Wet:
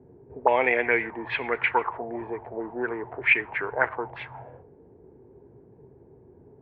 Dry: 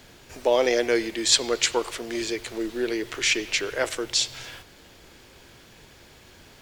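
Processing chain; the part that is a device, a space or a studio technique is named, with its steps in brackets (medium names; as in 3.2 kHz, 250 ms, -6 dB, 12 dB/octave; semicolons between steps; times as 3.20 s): envelope filter bass rig (touch-sensitive low-pass 370–2400 Hz up, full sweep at -18.5 dBFS; cabinet simulation 76–2200 Hz, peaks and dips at 130 Hz +4 dB, 210 Hz -4 dB, 330 Hz -8 dB, 550 Hz -7 dB, 900 Hz +7 dB, 1.3 kHz -4 dB)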